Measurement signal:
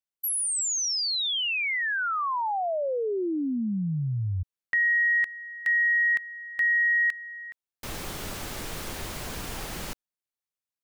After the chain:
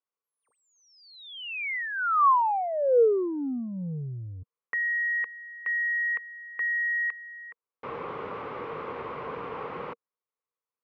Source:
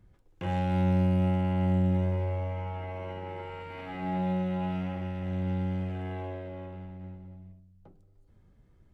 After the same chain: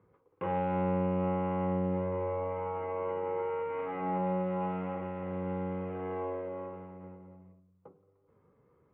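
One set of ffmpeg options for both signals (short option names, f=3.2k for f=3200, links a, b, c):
-filter_complex "[0:a]asplit=2[a][b];[b]asoftclip=type=tanh:threshold=-26dB,volume=-4.5dB[c];[a][c]amix=inputs=2:normalize=0,highpass=200,equalizer=f=210:t=q:w=4:g=-6,equalizer=f=320:t=q:w=4:g=-5,equalizer=f=470:t=q:w=4:g=10,equalizer=f=670:t=q:w=4:g=-6,equalizer=f=1.1k:t=q:w=4:g=9,equalizer=f=1.7k:t=q:w=4:g=-8,lowpass=f=2.1k:w=0.5412,lowpass=f=2.1k:w=1.3066,volume=-1.5dB"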